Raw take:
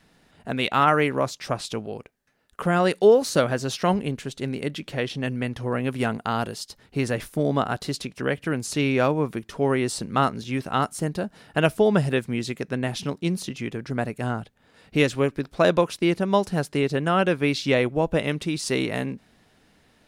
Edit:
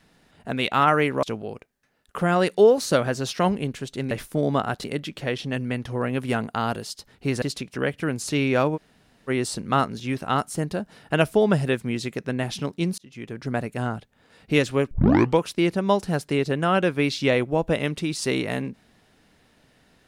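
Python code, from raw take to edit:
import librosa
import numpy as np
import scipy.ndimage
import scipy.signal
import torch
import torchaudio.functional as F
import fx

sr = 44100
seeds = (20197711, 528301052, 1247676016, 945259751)

y = fx.edit(x, sr, fx.cut(start_s=1.23, length_s=0.44),
    fx.move(start_s=7.13, length_s=0.73, to_s=4.55),
    fx.room_tone_fill(start_s=9.2, length_s=0.53, crossfade_s=0.04),
    fx.fade_in_span(start_s=13.42, length_s=0.49),
    fx.tape_start(start_s=15.35, length_s=0.48), tone=tone)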